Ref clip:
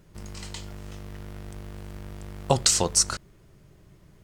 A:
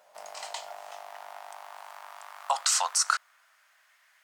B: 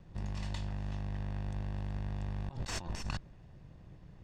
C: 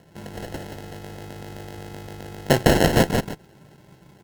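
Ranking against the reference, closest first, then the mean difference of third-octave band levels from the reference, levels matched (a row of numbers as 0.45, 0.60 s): C, B, A; 5.0, 8.5, 13.0 dB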